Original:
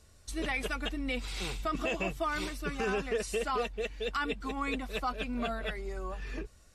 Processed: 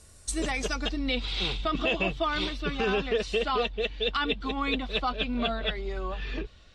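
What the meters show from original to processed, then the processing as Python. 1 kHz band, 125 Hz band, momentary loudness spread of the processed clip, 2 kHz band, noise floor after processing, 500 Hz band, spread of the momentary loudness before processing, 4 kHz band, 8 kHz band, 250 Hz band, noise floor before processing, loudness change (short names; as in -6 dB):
+4.0 dB, +5.0 dB, 7 LU, +4.0 dB, -53 dBFS, +5.0 dB, 7 LU, +10.0 dB, +4.5 dB, +5.0 dB, -58 dBFS, +5.5 dB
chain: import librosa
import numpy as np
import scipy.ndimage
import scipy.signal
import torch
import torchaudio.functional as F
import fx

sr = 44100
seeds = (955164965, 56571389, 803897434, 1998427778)

y = fx.filter_sweep_lowpass(x, sr, from_hz=9900.0, to_hz=3500.0, start_s=0.16, end_s=1.24, q=3.3)
y = fx.dynamic_eq(y, sr, hz=2100.0, q=0.9, threshold_db=-45.0, ratio=4.0, max_db=-5)
y = y * librosa.db_to_amplitude(5.0)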